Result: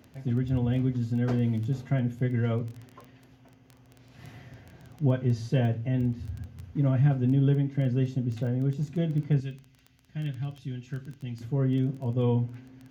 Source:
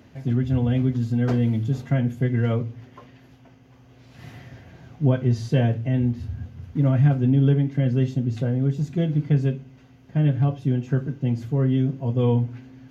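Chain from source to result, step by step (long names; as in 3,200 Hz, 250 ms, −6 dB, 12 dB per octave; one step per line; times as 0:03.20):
0:09.40–0:11.41: graphic EQ with 10 bands 125 Hz −6 dB, 250 Hz −6 dB, 500 Hz −12 dB, 1,000 Hz −9 dB, 4,000 Hz +4 dB
surface crackle 11 per second −30 dBFS
level −5 dB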